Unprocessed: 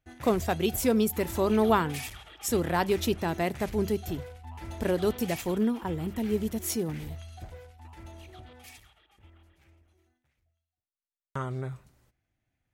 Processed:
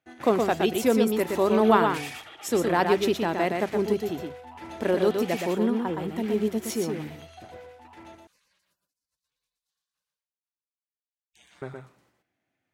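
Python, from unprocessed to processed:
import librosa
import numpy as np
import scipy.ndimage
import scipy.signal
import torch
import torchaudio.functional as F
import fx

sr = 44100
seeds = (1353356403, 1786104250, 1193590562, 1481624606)

y = scipy.signal.sosfilt(scipy.signal.butter(2, 230.0, 'highpass', fs=sr, output='sos'), x)
y = fx.spec_gate(y, sr, threshold_db=-30, keep='weak', at=(8.15, 11.62))
y = fx.high_shelf(y, sr, hz=6200.0, db=-11.5)
y = y + 10.0 ** (-4.5 / 20.0) * np.pad(y, (int(119 * sr / 1000.0), 0))[:len(y)]
y = y * librosa.db_to_amplitude(4.0)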